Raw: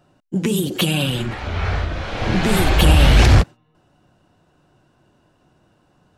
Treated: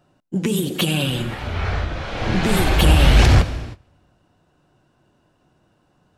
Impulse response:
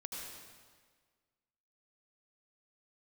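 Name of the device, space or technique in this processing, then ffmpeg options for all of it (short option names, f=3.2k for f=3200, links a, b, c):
keyed gated reverb: -filter_complex "[0:a]asplit=3[a][b][c];[1:a]atrim=start_sample=2205[d];[b][d]afir=irnorm=-1:irlink=0[e];[c]apad=whole_len=272181[f];[e][f]sidechaingate=range=-20dB:threshold=-52dB:ratio=16:detection=peak,volume=-8dB[g];[a][g]amix=inputs=2:normalize=0,volume=-3dB"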